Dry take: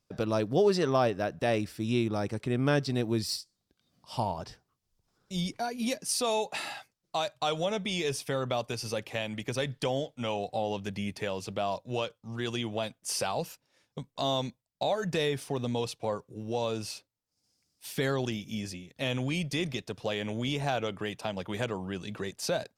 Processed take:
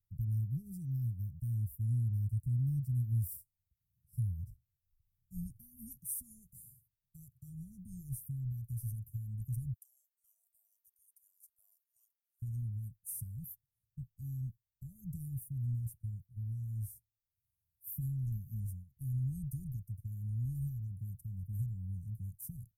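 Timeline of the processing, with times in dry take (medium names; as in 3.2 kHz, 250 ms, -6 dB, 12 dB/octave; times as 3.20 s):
9.73–12.42 s: steep high-pass 630 Hz 96 dB/octave
whole clip: gate -43 dBFS, range -7 dB; inverse Chebyshev band-stop 450–4000 Hz, stop band 70 dB; trim +7.5 dB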